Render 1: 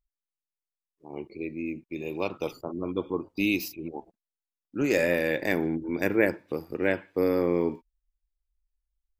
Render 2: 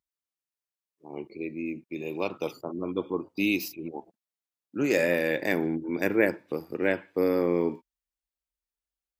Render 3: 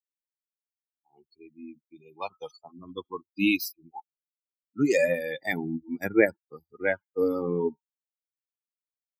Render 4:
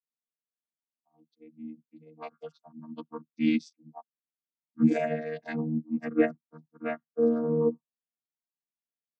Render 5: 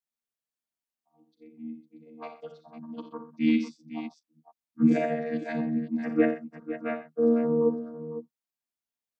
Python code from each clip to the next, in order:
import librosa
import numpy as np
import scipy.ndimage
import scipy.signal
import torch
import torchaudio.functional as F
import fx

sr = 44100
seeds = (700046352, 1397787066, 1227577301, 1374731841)

y1 = scipy.signal.sosfilt(scipy.signal.butter(2, 120.0, 'highpass', fs=sr, output='sos'), x)
y2 = fx.bin_expand(y1, sr, power=3.0)
y2 = y2 * 10.0 ** (6.5 / 20.0)
y3 = fx.chord_vocoder(y2, sr, chord='bare fifth', root=51)
y4 = fx.echo_multitap(y3, sr, ms=(42, 60, 86, 127, 505), db=(-12.5, -10.0, -13.5, -17.5, -11.5))